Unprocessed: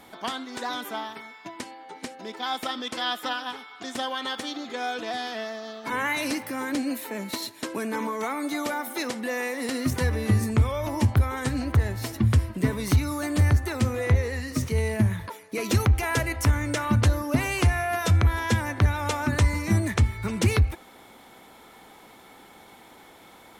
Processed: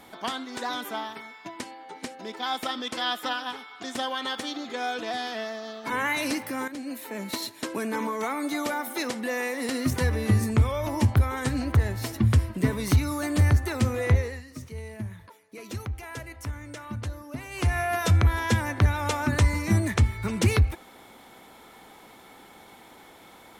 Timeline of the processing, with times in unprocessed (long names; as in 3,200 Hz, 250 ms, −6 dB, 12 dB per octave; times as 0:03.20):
0:06.68–0:07.31: fade in, from −13 dB
0:14.15–0:17.79: duck −13 dB, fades 0.29 s